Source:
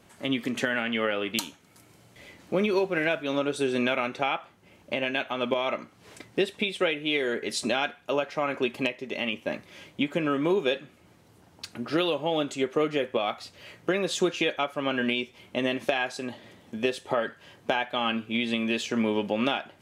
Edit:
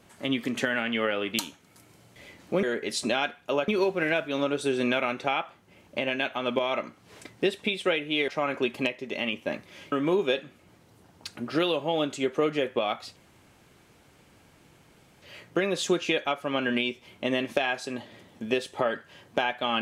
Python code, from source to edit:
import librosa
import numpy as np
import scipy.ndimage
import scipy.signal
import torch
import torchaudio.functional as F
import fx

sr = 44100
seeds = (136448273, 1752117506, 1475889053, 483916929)

y = fx.edit(x, sr, fx.move(start_s=7.23, length_s=1.05, to_s=2.63),
    fx.cut(start_s=9.92, length_s=0.38),
    fx.insert_room_tone(at_s=13.54, length_s=2.06), tone=tone)